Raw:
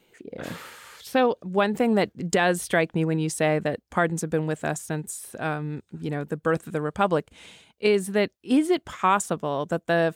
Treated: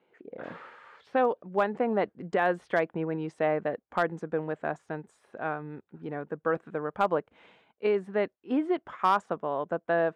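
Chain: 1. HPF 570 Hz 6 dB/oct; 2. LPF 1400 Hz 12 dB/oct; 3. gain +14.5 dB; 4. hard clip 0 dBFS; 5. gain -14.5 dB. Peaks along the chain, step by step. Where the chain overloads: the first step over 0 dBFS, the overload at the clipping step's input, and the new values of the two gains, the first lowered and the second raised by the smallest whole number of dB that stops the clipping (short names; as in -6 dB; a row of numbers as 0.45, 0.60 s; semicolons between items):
-9.0, -11.0, +3.5, 0.0, -14.5 dBFS; step 3, 3.5 dB; step 3 +10.5 dB, step 5 -10.5 dB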